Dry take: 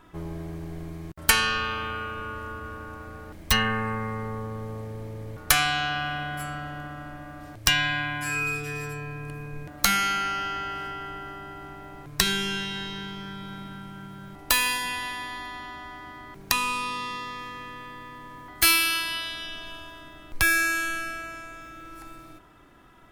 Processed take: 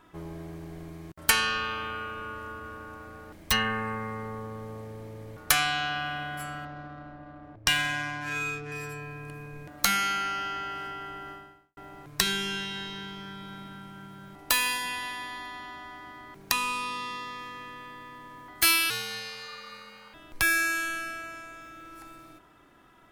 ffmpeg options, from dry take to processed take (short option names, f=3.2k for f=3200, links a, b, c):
-filter_complex "[0:a]asettb=1/sr,asplit=3[a][b][c];[a]atrim=end=6.654[d];[b]atrim=start=6.65:end=8.72,asetpts=PTS-STARTPTS,afade=t=in:d=0.004:c=qsin,afade=t=out:st=2.066:d=0.004:c=qsin,adynamicsmooth=sensitivity=3.5:basefreq=920[e];[c]atrim=start=8.716[f];[d][e]acrossfade=d=0.004:c1=hsin:c2=qsin[g];[g][f]acrossfade=d=0.004:c1=qsin:c2=hsin,asettb=1/sr,asplit=3[h][i][j];[h]atrim=end=18.904[k];[i]atrim=start=18.9:end=20.14,asetpts=PTS-STARTPTS,afade=t=in:d=0.004:c=qsin,afade=t=out:st=1.236:d=0.004:c=qsin,aeval=exprs='val(0)*sin(2*PI*1200*n/s)':c=same[l];[j]atrim=start=20.136[m];[k][l]acrossfade=d=0.004:c1=hsin:c2=qsin[n];[n][m]acrossfade=d=0.004:c1=qsin:c2=hsin,asplit=2[o][p];[o]atrim=end=11.77,asetpts=PTS-STARTPTS,afade=t=out:st=11.32:d=0.45:c=qua[q];[p]atrim=start=11.77,asetpts=PTS-STARTPTS,afade=t=in:d=0.004:c=hsin[r];[q][r]concat=n=2:v=0:a=1,lowshelf=f=110:g=-8,volume=-2.5dB"